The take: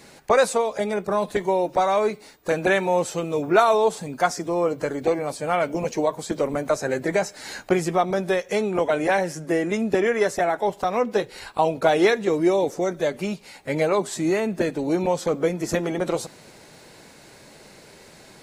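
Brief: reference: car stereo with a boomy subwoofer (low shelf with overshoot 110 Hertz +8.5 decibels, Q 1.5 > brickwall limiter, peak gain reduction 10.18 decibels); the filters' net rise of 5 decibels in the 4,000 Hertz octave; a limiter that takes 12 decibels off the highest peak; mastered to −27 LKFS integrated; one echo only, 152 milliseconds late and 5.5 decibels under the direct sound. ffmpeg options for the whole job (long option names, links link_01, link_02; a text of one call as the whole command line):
ffmpeg -i in.wav -af "equalizer=frequency=4000:width_type=o:gain=6,alimiter=limit=-16dB:level=0:latency=1,lowshelf=frequency=110:width_type=q:width=1.5:gain=8.5,aecho=1:1:152:0.531,volume=4.5dB,alimiter=limit=-18.5dB:level=0:latency=1" out.wav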